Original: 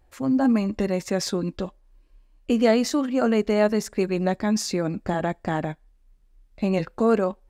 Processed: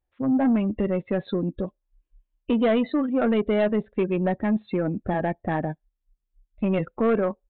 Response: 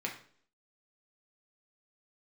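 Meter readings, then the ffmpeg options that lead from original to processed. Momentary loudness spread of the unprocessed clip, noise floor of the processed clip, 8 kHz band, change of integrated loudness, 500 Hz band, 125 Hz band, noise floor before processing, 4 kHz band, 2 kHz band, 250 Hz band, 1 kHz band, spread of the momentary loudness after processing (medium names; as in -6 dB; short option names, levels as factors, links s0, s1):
9 LU, -80 dBFS, under -40 dB, -1.0 dB, -1.0 dB, 0.0 dB, -59 dBFS, -8.0 dB, -1.5 dB, -0.5 dB, -1.5 dB, 8 LU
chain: -af "afftdn=nr=23:nf=-32,aemphasis=mode=production:type=50fm,aresample=8000,asoftclip=type=tanh:threshold=0.141,aresample=44100,volume=1.26"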